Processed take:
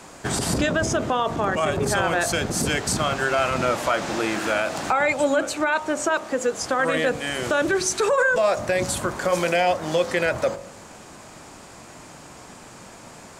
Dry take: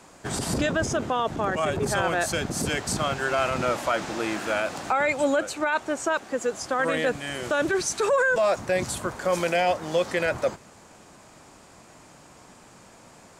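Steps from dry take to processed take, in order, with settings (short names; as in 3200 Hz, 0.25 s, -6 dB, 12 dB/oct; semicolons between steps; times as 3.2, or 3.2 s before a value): de-hum 46.37 Hz, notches 27; in parallel at +3 dB: compressor, threshold -32 dBFS, peak gain reduction 13.5 dB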